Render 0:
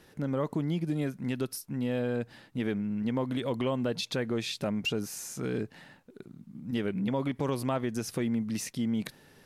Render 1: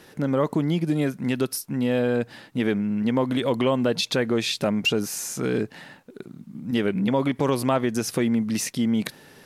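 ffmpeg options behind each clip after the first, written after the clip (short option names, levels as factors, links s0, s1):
-af "lowshelf=f=92:g=-11,volume=2.82"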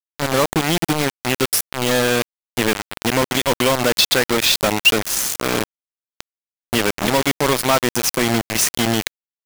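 -af "tiltshelf=f=920:g=-4.5,acrusher=bits=3:mix=0:aa=0.000001,volume=2"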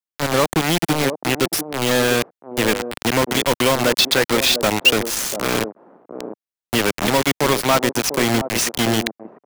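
-filter_complex "[0:a]acrossover=split=190|870|5400[s0][s1][s2][s3];[s1]aecho=1:1:696:0.447[s4];[s3]alimiter=limit=0.211:level=0:latency=1:release=178[s5];[s0][s4][s2][s5]amix=inputs=4:normalize=0"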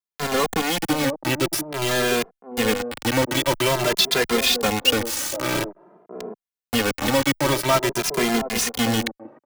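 -filter_complex "[0:a]asplit=2[s0][s1];[s1]adelay=2.5,afreqshift=0.49[s2];[s0][s2]amix=inputs=2:normalize=1"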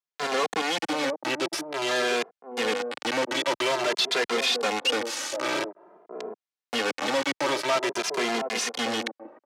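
-af "asoftclip=type=tanh:threshold=0.126,highpass=360,lowpass=6100"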